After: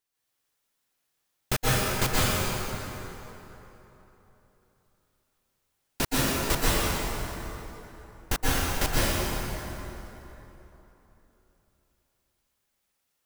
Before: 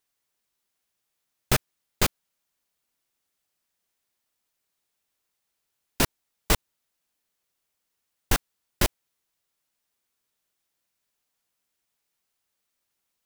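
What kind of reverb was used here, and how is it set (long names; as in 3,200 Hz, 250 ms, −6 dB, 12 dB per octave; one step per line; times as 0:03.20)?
dense smooth reverb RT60 3.5 s, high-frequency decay 0.65×, pre-delay 110 ms, DRR −8.5 dB
level −5.5 dB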